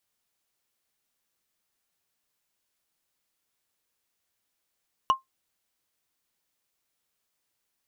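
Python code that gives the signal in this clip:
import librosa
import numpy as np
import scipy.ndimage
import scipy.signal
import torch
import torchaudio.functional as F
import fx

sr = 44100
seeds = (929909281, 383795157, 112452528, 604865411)

y = fx.strike_wood(sr, length_s=0.45, level_db=-13, body='bar', hz=1060.0, decay_s=0.14, tilt_db=9.5, modes=5)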